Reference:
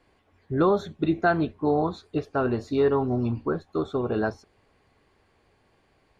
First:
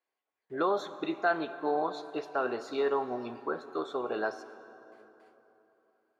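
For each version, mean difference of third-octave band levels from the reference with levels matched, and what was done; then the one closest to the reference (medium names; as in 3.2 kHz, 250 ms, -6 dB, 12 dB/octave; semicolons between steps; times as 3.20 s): 7.5 dB: gate with hold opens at -52 dBFS; high-pass 520 Hz 12 dB/octave; in parallel at +0.5 dB: peak limiter -20 dBFS, peak gain reduction 9 dB; on the sum: plate-style reverb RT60 3.5 s, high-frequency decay 0.6×, DRR 12 dB; trim -7.5 dB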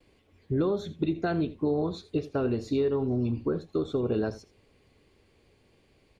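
3.0 dB: gate with hold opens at -56 dBFS; high-order bell 1.1 kHz -8.5 dB; compression 4:1, threshold -27 dBFS, peak gain reduction 8.5 dB; on a send: delay 81 ms -16.5 dB; on the sum: trim +2.5 dB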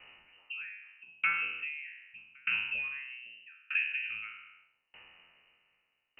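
17.5 dB: spectral sustain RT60 0.80 s; frequency inversion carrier 2.9 kHz; compression 6:1, threshold -35 dBFS, peak gain reduction 18 dB; sawtooth tremolo in dB decaying 0.81 Hz, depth 31 dB; trim +8 dB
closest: second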